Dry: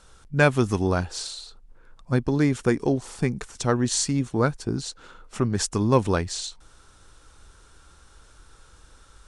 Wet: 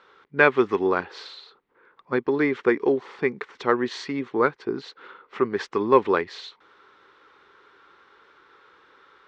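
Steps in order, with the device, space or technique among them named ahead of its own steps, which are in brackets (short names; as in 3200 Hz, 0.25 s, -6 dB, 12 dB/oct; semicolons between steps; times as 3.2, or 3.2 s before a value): phone earpiece (speaker cabinet 370–3400 Hz, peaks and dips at 400 Hz +7 dB, 660 Hz -7 dB, 1100 Hz +4 dB, 2000 Hz +6 dB, 2800 Hz -3 dB); gain +2.5 dB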